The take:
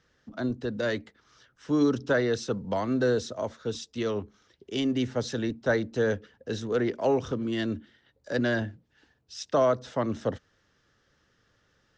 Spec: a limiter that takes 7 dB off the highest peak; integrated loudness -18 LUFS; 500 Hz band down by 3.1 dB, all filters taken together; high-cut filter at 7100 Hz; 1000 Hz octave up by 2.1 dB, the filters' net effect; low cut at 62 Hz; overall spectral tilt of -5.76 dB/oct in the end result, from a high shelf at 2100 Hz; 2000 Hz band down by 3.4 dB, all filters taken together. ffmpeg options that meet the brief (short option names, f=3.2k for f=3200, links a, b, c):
-af "highpass=62,lowpass=7.1k,equalizer=f=500:t=o:g=-5,equalizer=f=1k:t=o:g=6.5,equalizer=f=2k:t=o:g=-5,highshelf=f=2.1k:g=-4.5,volume=14.5dB,alimiter=limit=-6dB:level=0:latency=1"